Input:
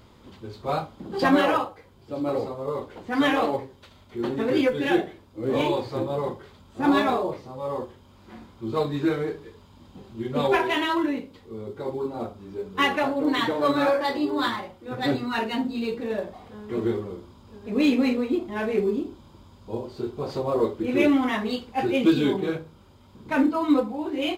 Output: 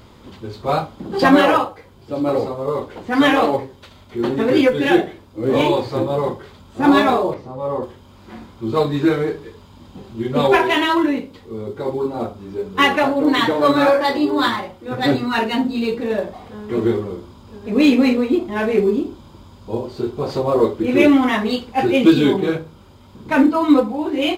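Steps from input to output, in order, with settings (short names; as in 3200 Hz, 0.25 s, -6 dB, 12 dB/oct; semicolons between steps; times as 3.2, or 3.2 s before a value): 7.34–7.83 high shelf 2300 Hz -9.5 dB; gain +7.5 dB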